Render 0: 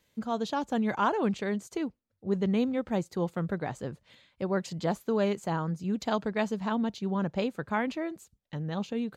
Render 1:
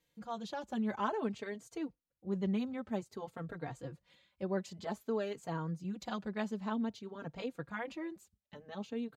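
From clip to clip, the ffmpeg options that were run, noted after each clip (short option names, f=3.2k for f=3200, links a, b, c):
-filter_complex "[0:a]asplit=2[a][b];[b]adelay=3.8,afreqshift=0.53[c];[a][c]amix=inputs=2:normalize=1,volume=-5.5dB"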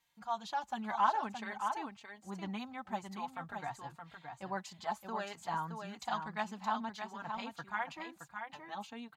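-filter_complex "[0:a]lowshelf=f=630:t=q:w=3:g=-9,asplit=2[a][b];[b]aecho=0:1:620:0.473[c];[a][c]amix=inputs=2:normalize=0,volume=2dB"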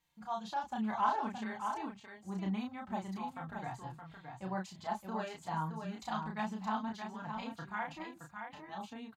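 -filter_complex "[0:a]lowshelf=f=370:g=10,asplit=2[a][b];[b]adelay=32,volume=-3dB[c];[a][c]amix=inputs=2:normalize=0,volume=-4.5dB"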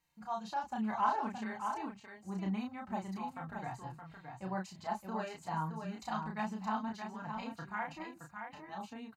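-af "bandreject=f=3.4k:w=5.9"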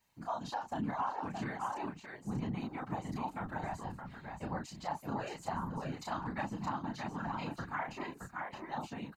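-af "acompressor=threshold=-38dB:ratio=6,afftfilt=real='hypot(re,im)*cos(2*PI*random(0))':imag='hypot(re,im)*sin(2*PI*random(1))':win_size=512:overlap=0.75,volume=10dB"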